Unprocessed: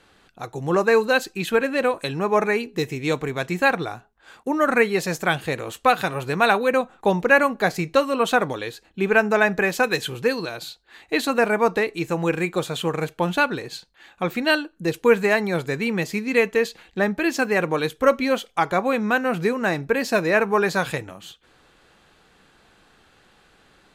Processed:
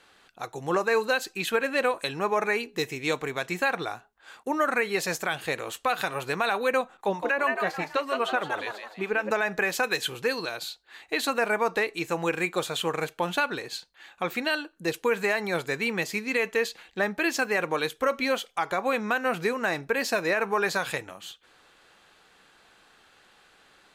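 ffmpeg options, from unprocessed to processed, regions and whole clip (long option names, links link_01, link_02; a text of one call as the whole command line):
ffmpeg -i in.wav -filter_complex "[0:a]asettb=1/sr,asplit=3[link_01][link_02][link_03];[link_01]atrim=end=6.974[link_04];[link_02]atrim=start=6.97:end=9.31,asetpts=PTS-STARTPTS,afade=type=in:duration=0.004:curve=qsin,afade=type=out:start_time=2.336:duration=0.004:curve=qsin,acrossover=split=4000[link_05][link_06];[link_06]acompressor=threshold=-46dB:ratio=4:attack=1:release=60[link_07];[link_05][link_07]amix=inputs=2:normalize=0,acrossover=split=570[link_08][link_09];[link_08]aeval=exprs='val(0)*(1-0.7/2+0.7/2*cos(2*PI*7.4*n/s))':channel_layout=same[link_10];[link_09]aeval=exprs='val(0)*(1-0.7/2-0.7/2*cos(2*PI*7.4*n/s))':channel_layout=same[link_11];[link_10][link_11]amix=inputs=2:normalize=0,asplit=6[link_12][link_13][link_14][link_15][link_16][link_17];[link_13]adelay=164,afreqshift=110,volume=-8dB[link_18];[link_14]adelay=328,afreqshift=220,volume=-16dB[link_19];[link_15]adelay=492,afreqshift=330,volume=-23.9dB[link_20];[link_16]adelay=656,afreqshift=440,volume=-31.9dB[link_21];[link_17]adelay=820,afreqshift=550,volume=-39.8dB[link_22];[link_12][link_18][link_19][link_20][link_21][link_22]amix=inputs=6:normalize=0,atrim=end_sample=103194[link_23];[link_03]atrim=start=9.306[link_24];[link_04][link_23]acrossfade=duration=0.004:curve1=hsin:curve2=qsin[link_25];[link_25][link_24]acrossfade=duration=0.004:curve1=qsin:curve2=hsin,lowshelf=frequency=340:gain=-12,alimiter=limit=-14.5dB:level=0:latency=1:release=105" out.wav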